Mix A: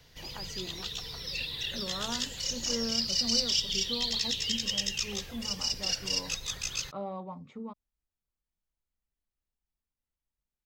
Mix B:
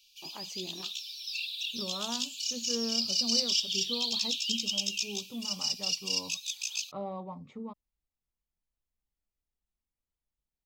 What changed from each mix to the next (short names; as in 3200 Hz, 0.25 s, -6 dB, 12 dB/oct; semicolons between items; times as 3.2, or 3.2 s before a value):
background: add brick-wall FIR high-pass 2300 Hz; master: add bell 1500 Hz -7 dB 0.33 oct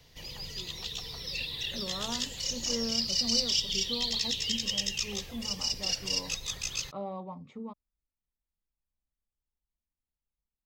first voice -9.0 dB; background: remove brick-wall FIR high-pass 2300 Hz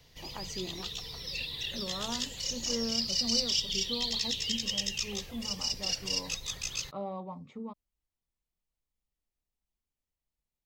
first voice +12.0 dB; reverb: off